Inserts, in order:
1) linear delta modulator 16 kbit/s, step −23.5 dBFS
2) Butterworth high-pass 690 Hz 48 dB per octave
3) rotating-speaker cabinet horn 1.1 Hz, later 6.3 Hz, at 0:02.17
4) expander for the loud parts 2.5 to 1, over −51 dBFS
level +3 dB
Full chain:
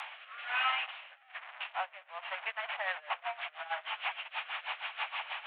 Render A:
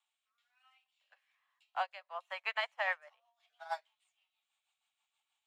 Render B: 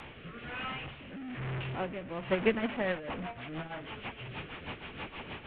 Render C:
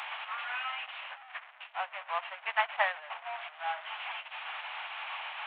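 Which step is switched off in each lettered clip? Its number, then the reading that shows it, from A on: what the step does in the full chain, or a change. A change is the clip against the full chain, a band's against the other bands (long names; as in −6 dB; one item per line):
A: 1, 500 Hz band +5.0 dB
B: 2, 500 Hz band +16.5 dB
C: 3, 4 kHz band −4.0 dB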